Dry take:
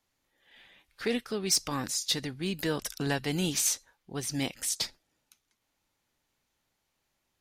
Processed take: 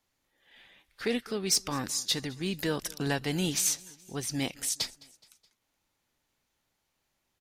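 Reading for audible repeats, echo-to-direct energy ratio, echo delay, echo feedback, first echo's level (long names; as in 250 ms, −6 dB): 3, −21.5 dB, 211 ms, 52%, −23.0 dB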